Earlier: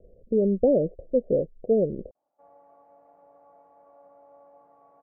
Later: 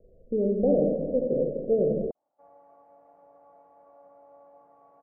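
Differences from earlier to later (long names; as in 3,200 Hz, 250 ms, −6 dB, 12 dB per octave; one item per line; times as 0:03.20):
speech −8.0 dB
reverb: on, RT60 1.9 s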